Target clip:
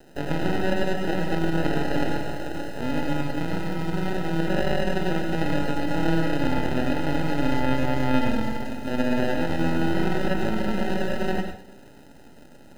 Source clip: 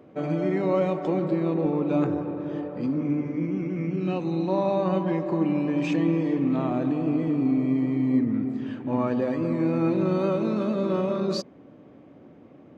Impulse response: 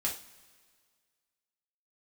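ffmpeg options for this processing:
-filter_complex "[0:a]acrusher=samples=39:mix=1:aa=0.000001,aeval=exprs='max(val(0),0)':c=same,acrossover=split=3800[a][b];[b]acompressor=threshold=-50dB:ratio=4:attack=1:release=60[c];[a][c]amix=inputs=2:normalize=0,asplit=2[d][e];[1:a]atrim=start_sample=2205,adelay=100[f];[e][f]afir=irnorm=-1:irlink=0,volume=-7.5dB[g];[d][g]amix=inputs=2:normalize=0,volume=2.5dB"

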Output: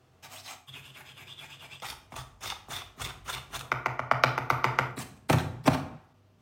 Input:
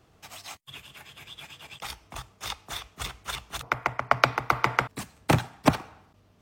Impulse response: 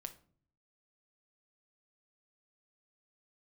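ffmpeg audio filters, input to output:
-filter_complex "[0:a]highpass=56[a];[1:a]atrim=start_sample=2205,afade=t=out:st=0.25:d=0.01,atrim=end_sample=11466,asetrate=32193,aresample=44100[b];[a][b]afir=irnorm=-1:irlink=0"

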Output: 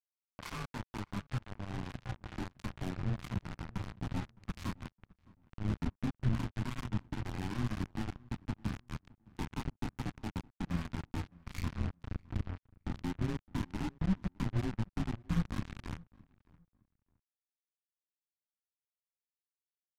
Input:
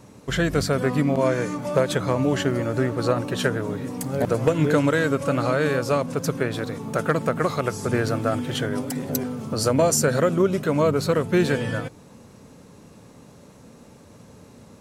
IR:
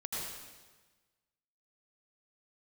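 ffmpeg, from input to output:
-filter_complex "[0:a]highpass=f=270:t=q:w=0.5412,highpass=f=270:t=q:w=1.307,lowpass=f=3.5k:t=q:w=0.5176,lowpass=f=3.5k:t=q:w=0.7071,lowpass=f=3.5k:t=q:w=1.932,afreqshift=-130,adynamicequalizer=threshold=0.01:dfrequency=1100:dqfactor=1.5:tfrequency=1100:tqfactor=1.5:attack=5:release=100:ratio=0.375:range=1.5:mode=boostabove:tftype=bell,acompressor=threshold=-26dB:ratio=4,flanger=delay=19:depth=5.7:speed=0.28,acrusher=bits=3:mix=0:aa=0.5,aeval=exprs='(tanh(178*val(0)+0.2)-tanh(0.2))/178':c=same,asplit=2[a][b];[b]adelay=454,lowpass=f=2k:p=1,volume=-23.5dB,asplit=2[c][d];[d]adelay=454,lowpass=f=2k:p=1,volume=0.25[e];[a][c][e]amix=inputs=3:normalize=0,asetrate=32667,aresample=44100,asubboost=boost=7.5:cutoff=180,volume=11.5dB"

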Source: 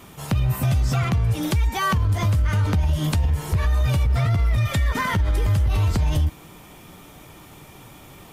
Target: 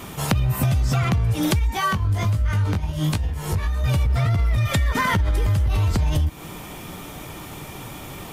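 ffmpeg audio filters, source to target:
-filter_complex "[0:a]acompressor=threshold=-26dB:ratio=6,asettb=1/sr,asplit=3[a][b][c];[a]atrim=end=1.594[d];[b]atrim=start=1.59:end=3.84,asetpts=PTS-STARTPTS,afade=t=in:d=0.004:c=qsin,afade=t=out:st=2.246:d=0.004:c=qsin,flanger=delay=18:depth=2.6:speed=1.2[e];[c]atrim=start=3.836[f];[d][e]acrossfade=d=0.004:c1=hsin:c2=qsin[g];[g][f]acrossfade=d=0.004:c1=qsin:c2=hsin,volume=8.5dB"

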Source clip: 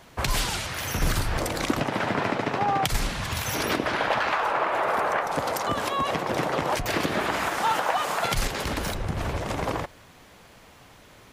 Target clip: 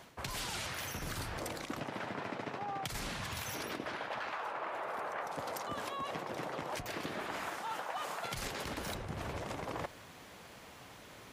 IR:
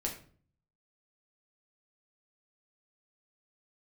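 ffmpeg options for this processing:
-af "highpass=f=100:p=1,areverse,acompressor=threshold=-35dB:ratio=12,areverse,volume=-1.5dB"

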